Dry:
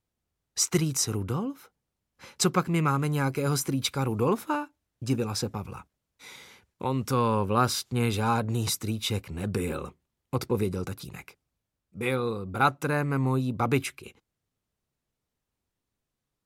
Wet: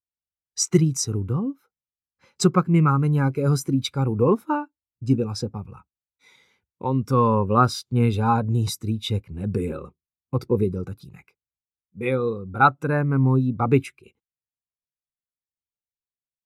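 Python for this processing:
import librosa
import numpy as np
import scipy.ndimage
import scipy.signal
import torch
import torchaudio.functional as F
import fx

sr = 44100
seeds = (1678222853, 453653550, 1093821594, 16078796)

y = fx.spectral_expand(x, sr, expansion=1.5)
y = y * 10.0 ** (6.5 / 20.0)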